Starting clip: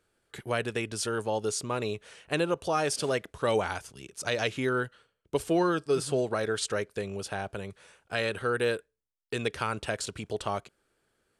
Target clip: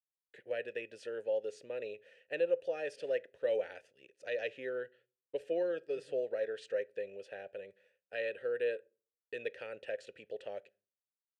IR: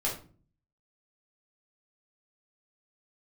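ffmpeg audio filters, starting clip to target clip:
-filter_complex "[0:a]asplit=3[a][b][c];[a]bandpass=f=530:t=q:w=8,volume=0dB[d];[b]bandpass=f=1.84k:t=q:w=8,volume=-6dB[e];[c]bandpass=f=2.48k:t=q:w=8,volume=-9dB[f];[d][e][f]amix=inputs=3:normalize=0,agate=range=-33dB:threshold=-59dB:ratio=3:detection=peak,asplit=2[g][h];[1:a]atrim=start_sample=2205,asetrate=52920,aresample=44100[i];[h][i]afir=irnorm=-1:irlink=0,volume=-24dB[j];[g][j]amix=inputs=2:normalize=0"

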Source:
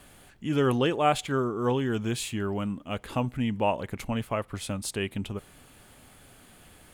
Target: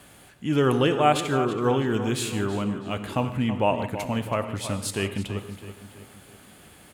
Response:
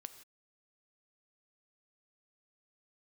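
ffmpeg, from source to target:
-filter_complex "[0:a]highpass=65,asplit=2[a][b];[b]adelay=327,lowpass=f=4.2k:p=1,volume=-11dB,asplit=2[c][d];[d]adelay=327,lowpass=f=4.2k:p=1,volume=0.48,asplit=2[e][f];[f]adelay=327,lowpass=f=4.2k:p=1,volume=0.48,asplit=2[g][h];[h]adelay=327,lowpass=f=4.2k:p=1,volume=0.48,asplit=2[i][j];[j]adelay=327,lowpass=f=4.2k:p=1,volume=0.48[k];[a][c][e][g][i][k]amix=inputs=6:normalize=0[l];[1:a]atrim=start_sample=2205[m];[l][m]afir=irnorm=-1:irlink=0,volume=8.5dB"

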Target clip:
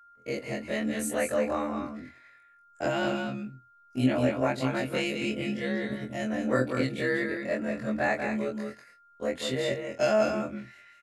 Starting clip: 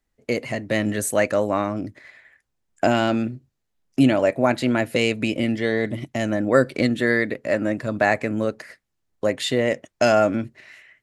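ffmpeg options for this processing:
-af "afftfilt=real='re':imag='-im':win_size=2048:overlap=0.75,aeval=exprs='val(0)+0.00355*sin(2*PI*1400*n/s)':c=same,aecho=1:1:189|213:0.501|0.266,volume=-4dB"

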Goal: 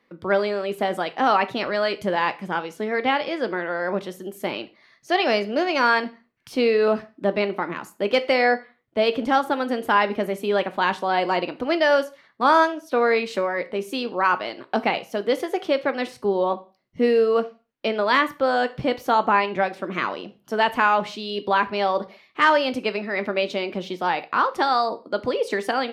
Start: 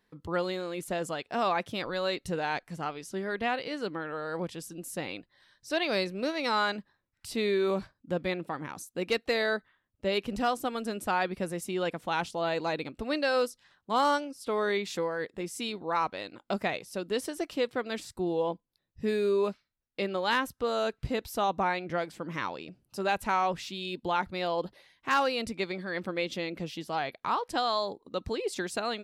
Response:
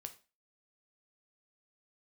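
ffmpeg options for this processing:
-filter_complex "[0:a]asetrate=49392,aresample=44100,acrossover=split=150 3700:gain=0.158 1 0.2[a][b][c];[a][b][c]amix=inputs=3:normalize=0,asplit=2[d][e];[1:a]atrim=start_sample=2205[f];[e][f]afir=irnorm=-1:irlink=0,volume=10.5dB[g];[d][g]amix=inputs=2:normalize=0"

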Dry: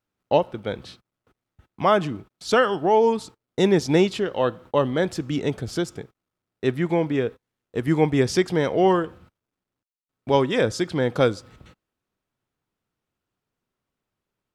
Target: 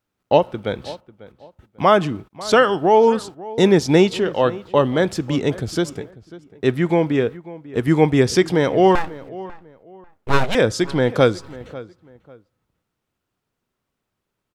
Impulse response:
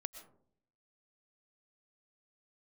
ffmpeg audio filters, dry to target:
-filter_complex "[0:a]asettb=1/sr,asplit=3[a][b][c];[a]atrim=end=8.954[d];[b]atrim=start=8.95:end=10.55,asetpts=PTS-STARTPTS,afade=t=in:d=0.004:c=qsin,afade=t=out:st=1.596:d=0.004:c=qsin,aeval=exprs='abs(val(0))':c=same[e];[c]atrim=start=10.546[f];[d][e]acrossfade=d=0.004:c1=hsin:c2=qsin[g];[g][f]acrossfade=d=0.004:c1=qsin:c2=hsin,asplit=2[h][i];[i]adelay=544,lowpass=f=2.2k:p=1,volume=-18dB,asplit=2[j][k];[k]adelay=544,lowpass=f=2.2k:p=1,volume=0.27[l];[h][j][l]amix=inputs=3:normalize=0,volume=4.5dB"

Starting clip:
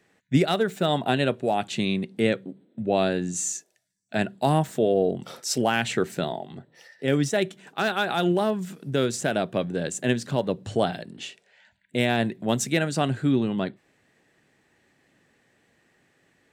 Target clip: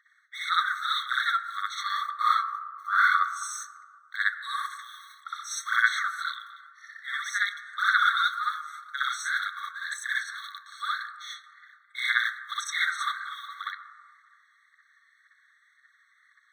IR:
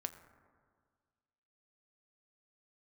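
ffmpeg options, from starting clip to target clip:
-filter_complex "[0:a]aemphasis=mode=reproduction:type=75kf,asettb=1/sr,asplit=3[a][b][c];[a]atrim=end=1.754[d];[b]atrim=start=1.75:end=3.53,asetpts=PTS-STARTPTS,afade=t=in:d=0.004:c=qsin,afade=t=out:st=1.776:d=0.004:c=qsin,aeval=exprs='val(0)*sin(2*PI*780*n/s)':c=same[e];[c]atrim=start=3.526[f];[d][e]acrossfade=d=0.004:c1=hsin:c2=qsin[g];[g][f]acrossfade=d=0.004:c1=qsin:c2=hsin,aphaser=in_gain=1:out_gain=1:delay=4.5:decay=0.71:speed=1.9:type=sinusoidal,asplit=2[h][i];[1:a]atrim=start_sample=2205,asetrate=39249,aresample=44100,adelay=61[j];[i][j]afir=irnorm=-1:irlink=0,volume=5.5dB[k];[h][k]amix=inputs=2:normalize=0,afftfilt=real='re*eq(mod(floor(b*sr/1024/1100),2),1)':imag='im*eq(mod(floor(b*sr/1024/1100),2),1)':win_size=1024:overlap=0.75"

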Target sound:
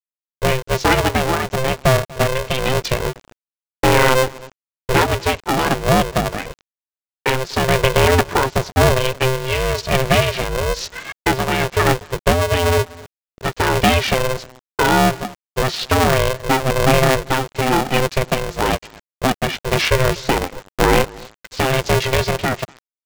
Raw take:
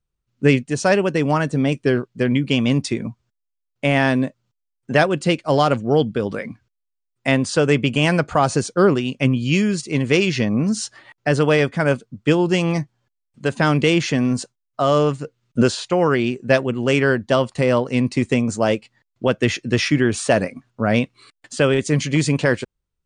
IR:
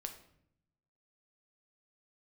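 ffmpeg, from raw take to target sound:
-filter_complex "[0:a]apsyclip=6.5dB,aphaser=in_gain=1:out_gain=1:delay=2.7:decay=0.44:speed=0.24:type=sinusoidal,tremolo=f=1:d=0.66,acompressor=threshold=-29dB:ratio=2,lowpass=f=4.8k:w=0.5412,lowpass=f=4.8k:w=1.3066,asplit=2[a][b];[b]adelay=242,lowpass=f=1.1k:p=1,volume=-21dB,asplit=2[c][d];[d]adelay=242,lowpass=f=1.1k:p=1,volume=0.33[e];[a][c][e]amix=inputs=3:normalize=0,agate=range=-35dB:threshold=-49dB:ratio=16:detection=peak,aresample=16000,aeval=exprs='val(0)*gte(abs(val(0)),0.00708)':c=same,aresample=44100,aeval=exprs='val(0)*sgn(sin(2*PI*260*n/s))':c=same,volume=7.5dB"

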